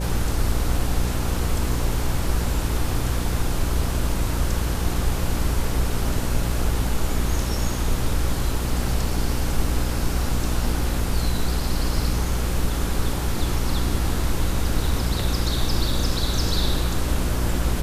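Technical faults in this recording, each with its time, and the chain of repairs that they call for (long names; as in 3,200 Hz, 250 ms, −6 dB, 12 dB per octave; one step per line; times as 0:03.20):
mains buzz 60 Hz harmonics 9 −26 dBFS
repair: hum removal 60 Hz, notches 9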